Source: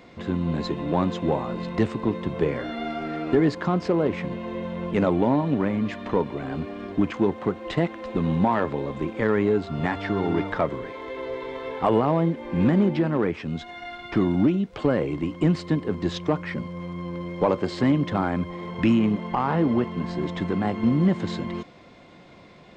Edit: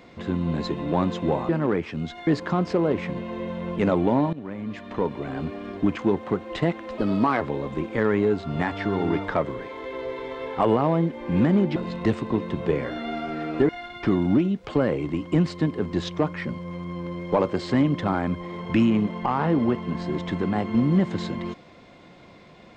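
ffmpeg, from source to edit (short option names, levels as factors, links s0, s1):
-filter_complex "[0:a]asplit=8[s0][s1][s2][s3][s4][s5][s6][s7];[s0]atrim=end=1.492[s8];[s1]atrim=start=12.998:end=13.782[s9];[s2]atrim=start=3.418:end=5.48,asetpts=PTS-STARTPTS,afade=t=out:st=2.058:d=0.004:c=hsin:silence=0.149624[s10];[s3]atrim=start=5.48:end=8.134,asetpts=PTS-STARTPTS,afade=t=in:d=0.94:silence=0.149624[s11];[s4]atrim=start=8.13:end=8.65,asetpts=PTS-STARTPTS,asetrate=53361,aresample=44100,atrim=end_sample=18952,asetpts=PTS-STARTPTS[s12];[s5]atrim=start=8.646:end=13.002[s13];[s6]atrim=start=1.488:end=3.422[s14];[s7]atrim=start=13.778[s15];[s8][s9]acrossfade=d=0.004:c1=hsin:c2=hsin[s16];[s10][s11]concat=n=2:v=0:a=1[s17];[s16][s17]acrossfade=d=0.004:c1=hsin:c2=hsin[s18];[s18][s12]acrossfade=d=0.004:c1=hsin:c2=hsin[s19];[s19][s13]acrossfade=d=0.004:c1=hsin:c2=hsin[s20];[s20][s14]acrossfade=d=0.004:c1=hsin:c2=hsin[s21];[s21][s15]acrossfade=d=0.004:c1=hsin:c2=hsin"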